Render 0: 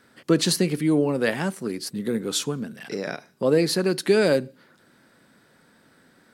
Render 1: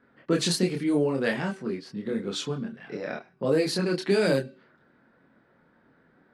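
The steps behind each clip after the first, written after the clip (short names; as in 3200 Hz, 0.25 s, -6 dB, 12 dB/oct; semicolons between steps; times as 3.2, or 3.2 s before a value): de-hum 383 Hz, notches 14; low-pass opened by the level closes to 1700 Hz, open at -15 dBFS; chorus voices 6, 0.54 Hz, delay 26 ms, depth 4.4 ms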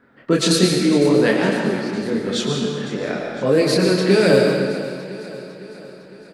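feedback echo 0.505 s, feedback 56%, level -15 dB; reverb RT60 1.7 s, pre-delay 80 ms, DRR 1 dB; gain +7 dB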